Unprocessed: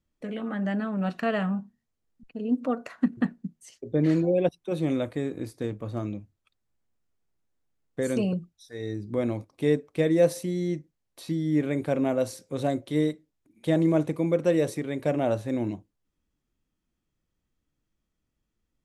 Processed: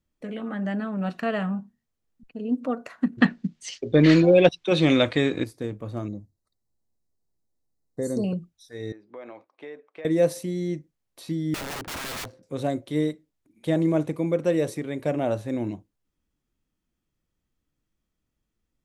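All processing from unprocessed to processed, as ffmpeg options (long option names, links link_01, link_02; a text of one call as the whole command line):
ffmpeg -i in.wav -filter_complex "[0:a]asettb=1/sr,asplit=3[link_01][link_02][link_03];[link_01]atrim=end=3.184[link_04];[link_02]atrim=start=3.18:end=5.44,asetpts=PTS-STARTPTS,afade=type=in:duration=0.004:curve=qsin,afade=type=out:start_time=2.256:duration=0.004:curve=qsin,lowpass=5600,equalizer=frequency=3700:width=0.41:gain=13.5,acontrast=60[link_05];[link_03]atrim=start=5.436[link_06];[link_04][link_05]acrossfade=duration=0.004:curve1=hsin:curve2=qsin[link_07];[link_07][link_06]acrossfade=duration=0.004:curve1=qsin:curve2=hsin,asettb=1/sr,asplit=3[link_08][link_09][link_10];[link_08]atrim=end=6.084[link_11];[link_09]atrim=start=6.08:end=8.24,asetpts=PTS-STARTPTS,afade=type=in:duration=0.004:curve=qsin,afade=type=out:start_time=2.156:duration=0.004:curve=qsin,asuperstop=centerf=2800:order=20:qfactor=1.7,equalizer=frequency=1500:width_type=o:width=0.83:gain=-13.5[link_12];[link_10]atrim=start=8.236[link_13];[link_11][link_12]acrossfade=duration=0.004:curve1=hsin:curve2=qsin[link_14];[link_14][link_13]acrossfade=duration=0.004:curve1=qsin:curve2=hsin,asettb=1/sr,asplit=3[link_15][link_16][link_17];[link_15]atrim=end=8.924[link_18];[link_16]atrim=start=8.92:end=10.05,asetpts=PTS-STARTPTS,afade=type=in:duration=0.004:curve=qsin,afade=type=out:start_time=1.126:duration=0.004:curve=qsin,highpass=680,lowpass=2300,acompressor=threshold=-36dB:ratio=5:attack=3.2:release=140:knee=1:detection=peak[link_19];[link_17]atrim=start=10.046[link_20];[link_18][link_19]acrossfade=duration=0.004:curve1=hsin:curve2=qsin[link_21];[link_21][link_20]acrossfade=duration=0.004:curve1=qsin:curve2=hsin,asettb=1/sr,asplit=3[link_22][link_23][link_24];[link_22]atrim=end=11.544[link_25];[link_23]atrim=start=11.54:end=12.43,asetpts=PTS-STARTPTS,afade=type=in:duration=0.004:curve=qsin,afade=type=out:start_time=0.886:duration=0.004:curve=qsin,bandreject=frequency=440:width=9.1,adynamicsmooth=sensitivity=7:basefreq=770,aeval=exprs='(mod(28.2*val(0)+1,2)-1)/28.2':channel_layout=same[link_26];[link_24]atrim=start=12.426[link_27];[link_25][link_26]acrossfade=duration=0.004:curve1=hsin:curve2=qsin[link_28];[link_28][link_27]acrossfade=duration=0.004:curve1=qsin:curve2=hsin" out.wav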